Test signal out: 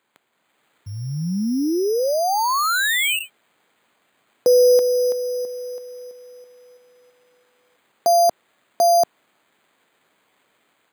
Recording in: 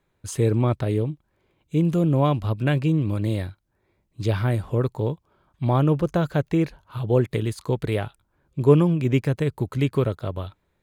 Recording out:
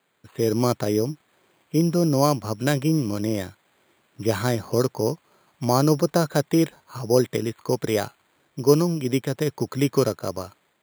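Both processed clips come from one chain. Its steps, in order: word length cut 10-bit, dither triangular; careless resampling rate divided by 8×, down filtered, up hold; high-pass 190 Hz 12 dB/octave; level rider gain up to 6.5 dB; trim -2 dB

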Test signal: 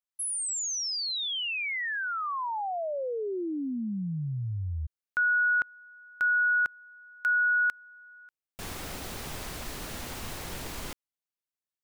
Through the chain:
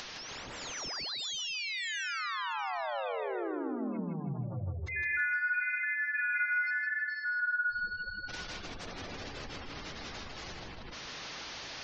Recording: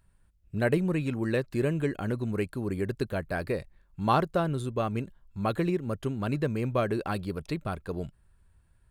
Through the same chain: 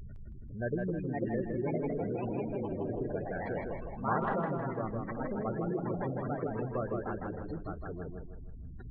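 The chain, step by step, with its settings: one-bit delta coder 32 kbps, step -30 dBFS; hum notches 50/100/150/200 Hz; upward compressor, threshold -33 dBFS; ever faster or slower copies 614 ms, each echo +3 st, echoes 3; spectral gate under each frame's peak -15 dB strong; on a send: tape echo 159 ms, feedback 44%, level -3 dB, low-pass 4.4 kHz; on the sum: trim -8.5 dB

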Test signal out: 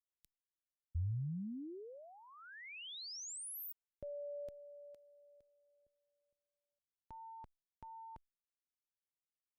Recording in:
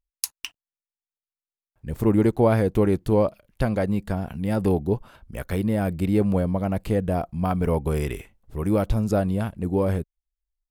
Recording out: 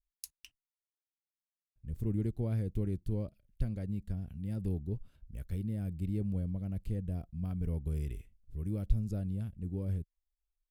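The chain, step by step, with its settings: amplifier tone stack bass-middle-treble 10-0-1; trim +2.5 dB

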